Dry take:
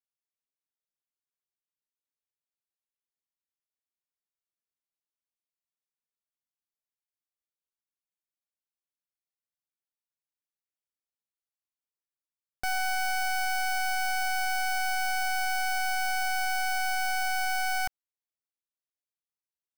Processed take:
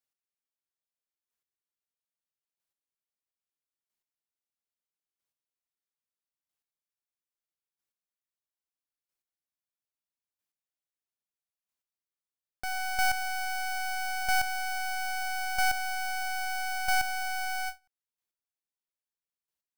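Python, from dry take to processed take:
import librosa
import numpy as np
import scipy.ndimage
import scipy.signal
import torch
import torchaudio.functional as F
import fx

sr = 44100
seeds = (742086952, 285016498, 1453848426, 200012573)

y = fx.chopper(x, sr, hz=0.77, depth_pct=60, duty_pct=10)
y = fx.end_taper(y, sr, db_per_s=330.0)
y = y * librosa.db_to_amplitude(4.0)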